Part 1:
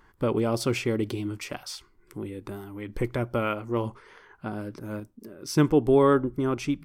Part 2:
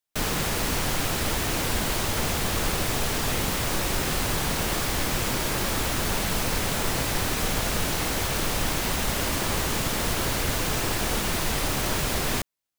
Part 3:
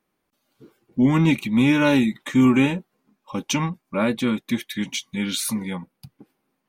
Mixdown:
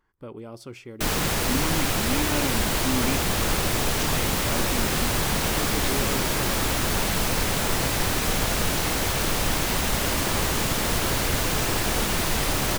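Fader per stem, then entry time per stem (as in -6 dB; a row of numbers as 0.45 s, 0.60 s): -14.0 dB, +2.0 dB, -12.0 dB; 0.00 s, 0.85 s, 0.50 s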